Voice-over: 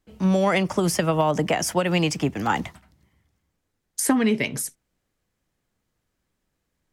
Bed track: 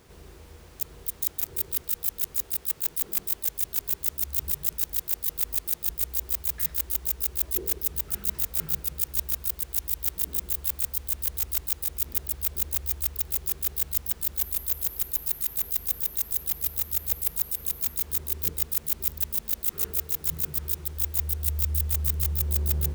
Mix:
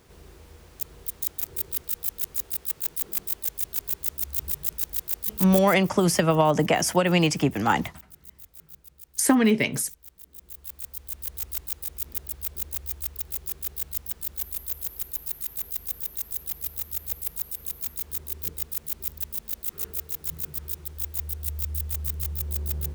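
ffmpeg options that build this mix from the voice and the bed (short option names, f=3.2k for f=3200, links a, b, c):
-filter_complex "[0:a]adelay=5200,volume=1dB[a];[1:a]volume=14.5dB,afade=t=out:st=5.57:d=0.27:silence=0.11885,afade=t=in:st=10.29:d=1.16:silence=0.16788[b];[a][b]amix=inputs=2:normalize=0"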